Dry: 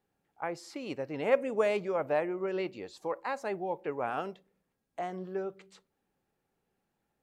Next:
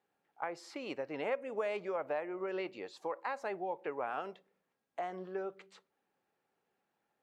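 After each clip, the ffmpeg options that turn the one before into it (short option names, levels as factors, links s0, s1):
-af "highpass=f=650:p=1,highshelf=f=4500:g=-12,acompressor=threshold=0.0126:ratio=3,volume=1.5"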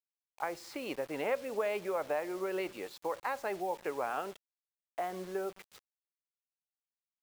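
-af "acrusher=bits=8:mix=0:aa=0.000001,volume=1.33"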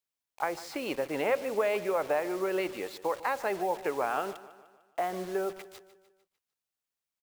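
-af "aecho=1:1:150|300|450|600|750:0.15|0.0763|0.0389|0.0198|0.0101,volume=1.78"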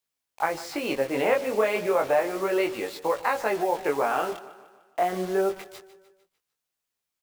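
-af "flanger=delay=17.5:depth=6:speed=0.32,volume=2.66"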